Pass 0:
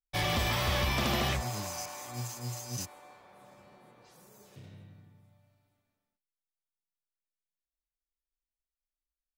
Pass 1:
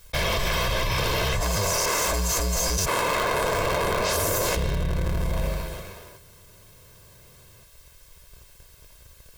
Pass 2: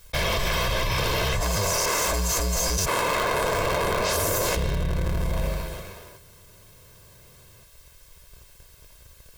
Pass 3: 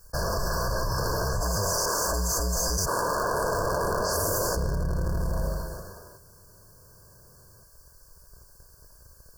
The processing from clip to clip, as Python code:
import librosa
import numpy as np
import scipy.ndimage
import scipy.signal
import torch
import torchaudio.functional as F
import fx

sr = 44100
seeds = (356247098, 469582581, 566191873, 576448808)

y1 = fx.cycle_switch(x, sr, every=2, mode='inverted')
y1 = y1 + 0.69 * np.pad(y1, (int(1.9 * sr / 1000.0), 0))[:len(y1)]
y1 = fx.env_flatten(y1, sr, amount_pct=100)
y2 = y1
y3 = fx.brickwall_bandstop(y2, sr, low_hz=1700.0, high_hz=4300.0)
y3 = y3 * 10.0 ** (-2.0 / 20.0)